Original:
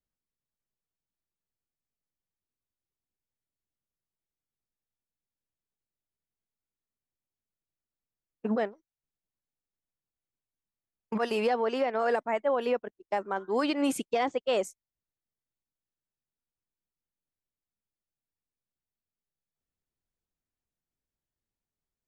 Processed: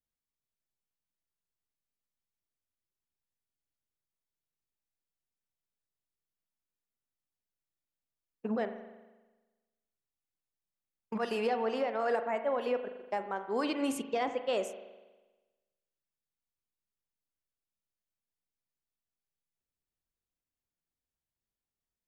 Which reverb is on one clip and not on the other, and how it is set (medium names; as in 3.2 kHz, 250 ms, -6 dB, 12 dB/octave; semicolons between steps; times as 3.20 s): spring tank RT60 1.2 s, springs 40 ms, chirp 65 ms, DRR 8.5 dB; trim -4.5 dB